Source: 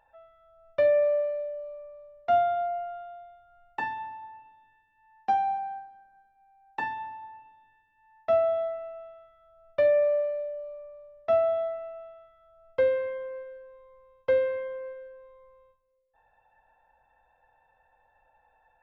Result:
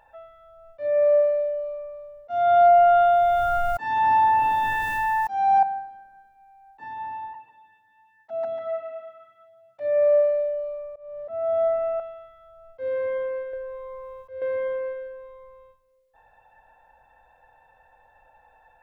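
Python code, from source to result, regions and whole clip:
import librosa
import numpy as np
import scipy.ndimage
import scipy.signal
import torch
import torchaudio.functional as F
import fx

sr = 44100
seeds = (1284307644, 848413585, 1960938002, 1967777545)

y = fx.chain(x, sr, fx.high_shelf(hz=2000.0, db=7.5),
    fx.env_flatten(amount_pct=70), at=(2.3, 5.63))
y = fx.chain(y, sr, fx.highpass(hz=130.0, slope=24),
    fx.env_flanger(rest_ms=10.4, full_db=-23.0),
    fx.echo_feedback(ms=145, feedback_pct=18, wet_db=-10.0), at=(7.33, 9.81))
y = fx.chain(y, sr, fx.air_absorb(metres=280.0),
    fx.band_squash(depth_pct=70), at=(10.96, 12.0))
y = fx.chain(y, sr, fx.comb(ms=1.8, depth=0.69),
    fx.band_squash(depth_pct=70), at=(13.53, 14.42))
y = fx.dynamic_eq(y, sr, hz=2800.0, q=1.4, threshold_db=-49.0, ratio=4.0, max_db=-6)
y = fx.auto_swell(y, sr, attack_ms=393.0)
y = y * 10.0 ** (8.5 / 20.0)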